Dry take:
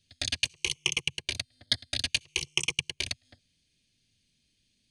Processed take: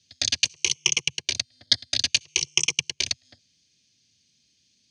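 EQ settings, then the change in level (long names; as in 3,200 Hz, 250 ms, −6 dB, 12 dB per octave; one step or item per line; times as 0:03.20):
high-pass filter 94 Hz
low-pass with resonance 5,900 Hz, resonance Q 3.7
+2.0 dB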